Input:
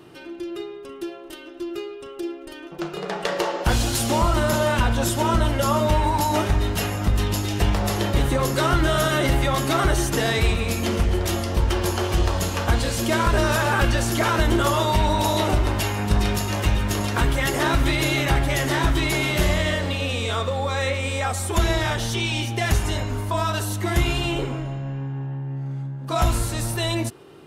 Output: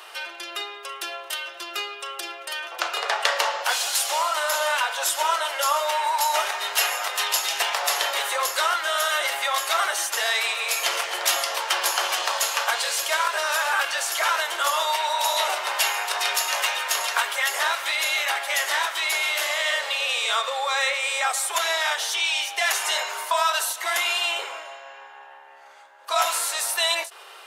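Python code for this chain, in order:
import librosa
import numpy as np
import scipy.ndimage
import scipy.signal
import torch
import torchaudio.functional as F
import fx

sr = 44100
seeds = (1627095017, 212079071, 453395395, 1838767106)

y = scipy.signal.sosfilt(scipy.signal.bessel(8, 1000.0, 'highpass', norm='mag', fs=sr, output='sos'), x)
y = fx.rider(y, sr, range_db=10, speed_s=0.5)
y = fx.end_taper(y, sr, db_per_s=170.0)
y = y * 10.0 ** (4.5 / 20.0)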